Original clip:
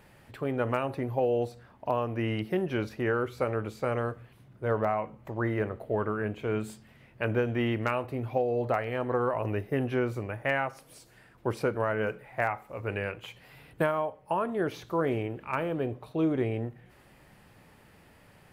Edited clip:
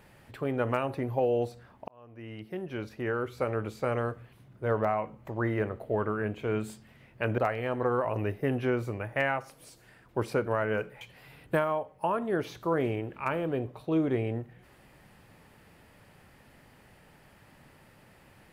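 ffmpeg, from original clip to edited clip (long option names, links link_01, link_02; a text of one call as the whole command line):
ffmpeg -i in.wav -filter_complex "[0:a]asplit=4[link_01][link_02][link_03][link_04];[link_01]atrim=end=1.88,asetpts=PTS-STARTPTS,afade=type=out:start_time=1.876:duration=0.004:curve=hsin[link_05];[link_02]atrim=start=1.88:end=7.382,asetpts=PTS-STARTPTS,afade=type=in:duration=1.77[link_06];[link_03]atrim=start=8.668:end=12.302[link_07];[link_04]atrim=start=13.278[link_08];[link_05][link_06]concat=n=2:v=0:a=1[link_09];[link_09][link_07]acrossfade=duration=0.004:curve1=hsin:curve2=hsin[link_10];[link_10][link_08]acrossfade=duration=0.004:curve1=hsin:curve2=hsin" out.wav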